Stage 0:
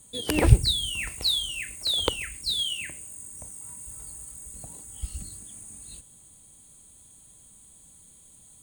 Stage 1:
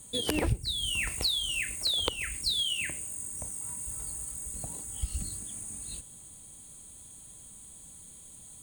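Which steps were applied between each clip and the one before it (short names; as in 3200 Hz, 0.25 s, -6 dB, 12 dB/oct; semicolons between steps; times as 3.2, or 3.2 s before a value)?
compressor 6:1, threshold -30 dBFS, peak gain reduction 20.5 dB; gain +3.5 dB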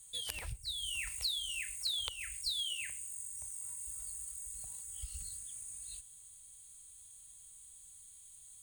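passive tone stack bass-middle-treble 10-0-10; gain -5.5 dB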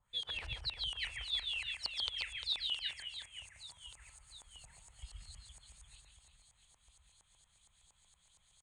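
LFO low-pass saw up 4.3 Hz 890–5400 Hz; reverse bouncing-ball echo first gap 0.14 s, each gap 1.5×, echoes 5; gain -3.5 dB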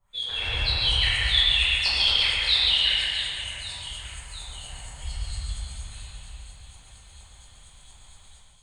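reverb RT60 2.4 s, pre-delay 5 ms, DRR -10.5 dB; AGC gain up to 8 dB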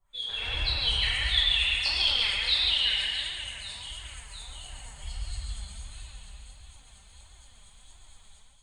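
flange 1.5 Hz, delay 2.6 ms, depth 2.6 ms, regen +40%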